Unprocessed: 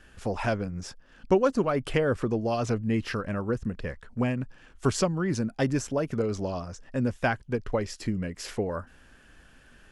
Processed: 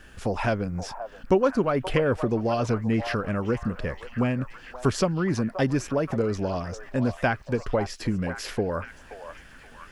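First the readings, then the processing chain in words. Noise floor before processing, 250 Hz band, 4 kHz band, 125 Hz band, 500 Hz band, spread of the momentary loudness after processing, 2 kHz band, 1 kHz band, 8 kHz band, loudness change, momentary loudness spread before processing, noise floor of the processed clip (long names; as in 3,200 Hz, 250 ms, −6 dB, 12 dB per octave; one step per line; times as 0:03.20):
−56 dBFS, +2.5 dB, +2.0 dB, +2.5 dB, +2.0 dB, 10 LU, +2.5 dB, +3.0 dB, −1.0 dB, +2.0 dB, 9 LU, −49 dBFS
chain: dynamic equaliser 7,800 Hz, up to −6 dB, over −54 dBFS, Q 1.3
in parallel at −2 dB: downward compressor, threshold −32 dBFS, peak gain reduction 14.5 dB
on the sum: echo through a band-pass that steps 527 ms, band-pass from 810 Hz, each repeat 0.7 octaves, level −7 dB
bit-depth reduction 12 bits, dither none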